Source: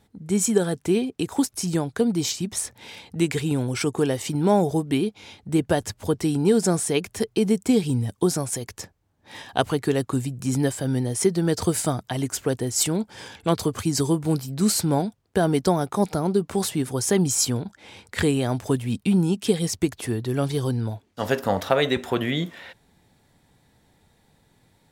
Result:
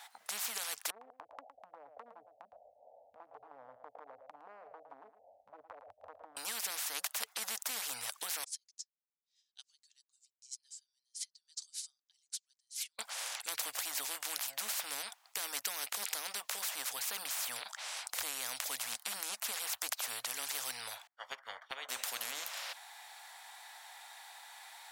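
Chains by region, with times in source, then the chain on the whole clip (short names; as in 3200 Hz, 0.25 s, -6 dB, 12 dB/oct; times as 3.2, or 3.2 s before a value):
0.9–6.37 steep low-pass 630 Hz 72 dB/oct + compressor 4:1, threshold -31 dBFS + echo 0.111 s -12 dB
8.44–12.99 Butterworth band-pass 5700 Hz, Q 1.8 + upward expander 2.5:1, over -52 dBFS
21.07–21.89 polynomial smoothing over 41 samples + upward expander 2.5:1, over -37 dBFS
whole clip: elliptic high-pass 750 Hz, stop band 50 dB; dynamic EQ 2000 Hz, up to +6 dB, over -46 dBFS, Q 1.1; spectral compressor 10:1; gain -4.5 dB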